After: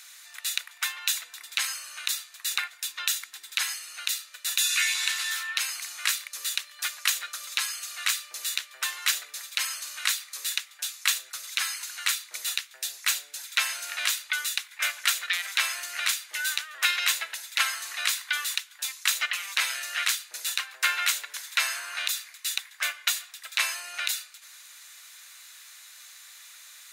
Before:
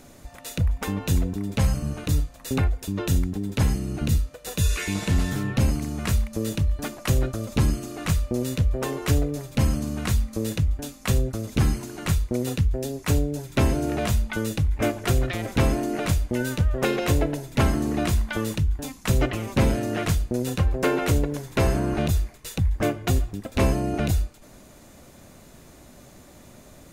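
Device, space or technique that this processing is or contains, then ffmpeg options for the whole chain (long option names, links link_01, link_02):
headphones lying on a table: -af "highpass=frequency=1500:width=0.5412,highpass=frequency=1500:width=1.3066,equalizer=frequency=3900:width_type=o:width=0.24:gain=5.5,volume=7dB"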